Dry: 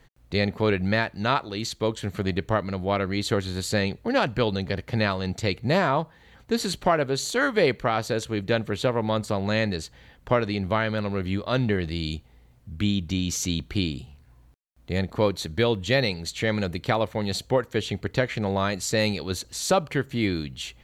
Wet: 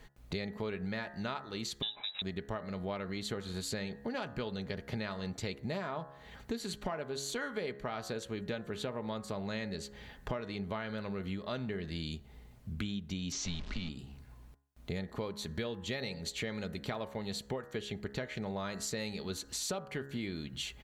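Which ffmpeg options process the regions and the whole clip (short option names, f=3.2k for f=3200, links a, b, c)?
-filter_complex "[0:a]asettb=1/sr,asplit=3[a][b][c];[a]atrim=end=1.824[d];[b]atrim=start=1.82:end=2.22,asetpts=PTS-STARTPTS,afade=t=in:d=0.004:c=qsin,afade=t=out:st=0.396:d=0.004:c=qsin,bandreject=f=2.1k:w=13,lowpass=f=3.4k:t=q:w=0.5098,lowpass=f=3.4k:t=q:w=0.6013,lowpass=f=3.4k:t=q:w=0.9,lowpass=f=3.4k:t=q:w=2.563,afreqshift=-4000[e];[c]atrim=start=2.216[f];[d][e]acrossfade=d=0.004:c1=hsin:c2=qsin[g];[g][f]acrossfade=d=0.004:c1=qsin:c2=hsin,asettb=1/sr,asplit=3[h][i][j];[h]atrim=end=13.324[k];[i]atrim=start=13.32:end=13.89,asetpts=PTS-STARTPTS,afade=t=in:d=0.004:c=qsin,afade=t=out:st=0.566:d=0.004:c=qsin,aeval=exprs='val(0)+0.5*0.0316*sgn(val(0))':c=same,lowpass=f=6.1k:w=0.5412,lowpass=f=6.1k:w=1.3066,afreqshift=-91[l];[j]atrim=start=13.886[m];[k][l]acrossfade=d=0.004:c1=hsin:c2=qsin[n];[n][m]acrossfade=d=0.004:c1=qsin:c2=hsin,aecho=1:1:4.8:0.32,bandreject=f=69.03:t=h:w=4,bandreject=f=138.06:t=h:w=4,bandreject=f=207.09:t=h:w=4,bandreject=f=276.12:t=h:w=4,bandreject=f=345.15:t=h:w=4,bandreject=f=414.18:t=h:w=4,bandreject=f=483.21:t=h:w=4,bandreject=f=552.24:t=h:w=4,bandreject=f=621.27:t=h:w=4,bandreject=f=690.3:t=h:w=4,bandreject=f=759.33:t=h:w=4,bandreject=f=828.36:t=h:w=4,bandreject=f=897.39:t=h:w=4,bandreject=f=966.42:t=h:w=4,bandreject=f=1.03545k:t=h:w=4,bandreject=f=1.10448k:t=h:w=4,bandreject=f=1.17351k:t=h:w=4,bandreject=f=1.24254k:t=h:w=4,bandreject=f=1.31157k:t=h:w=4,bandreject=f=1.3806k:t=h:w=4,bandreject=f=1.44963k:t=h:w=4,bandreject=f=1.51866k:t=h:w=4,bandreject=f=1.58769k:t=h:w=4,bandreject=f=1.65672k:t=h:w=4,bandreject=f=1.72575k:t=h:w=4,bandreject=f=1.79478k:t=h:w=4,bandreject=f=1.86381k:t=h:w=4,bandreject=f=1.93284k:t=h:w=4,bandreject=f=2.00187k:t=h:w=4,acompressor=threshold=-37dB:ratio=6,volume=1dB"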